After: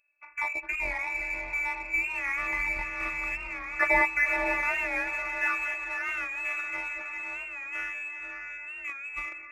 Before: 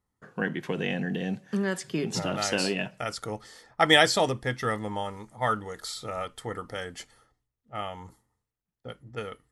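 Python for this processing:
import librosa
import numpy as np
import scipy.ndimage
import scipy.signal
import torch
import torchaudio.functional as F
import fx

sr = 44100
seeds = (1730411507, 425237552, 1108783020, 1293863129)

p1 = fx.reverse_delay(x, sr, ms=349, wet_db=-11)
p2 = fx.robotise(p1, sr, hz=284.0)
p3 = fx.low_shelf(p2, sr, hz=200.0, db=6.5)
p4 = p3 + fx.echo_diffused(p3, sr, ms=543, feedback_pct=51, wet_db=-4.5, dry=0)
p5 = fx.freq_invert(p4, sr, carrier_hz=2600)
p6 = 10.0 ** (-37.5 / 20.0) * np.tanh(p5 / 10.0 ** (-37.5 / 20.0))
p7 = p5 + F.gain(torch.from_numpy(p6), -5.0).numpy()
p8 = fx.record_warp(p7, sr, rpm=45.0, depth_cents=100.0)
y = F.gain(torch.from_numpy(p8), -1.5).numpy()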